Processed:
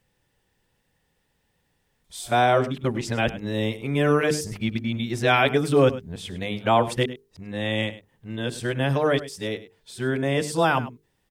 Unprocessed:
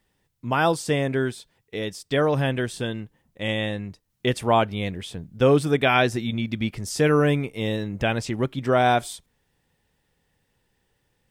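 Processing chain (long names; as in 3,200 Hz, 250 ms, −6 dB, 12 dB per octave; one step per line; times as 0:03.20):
played backwards from end to start
mains-hum notches 50/100/150/200/250/300/350/400/450 Hz
single-tap delay 102 ms −15.5 dB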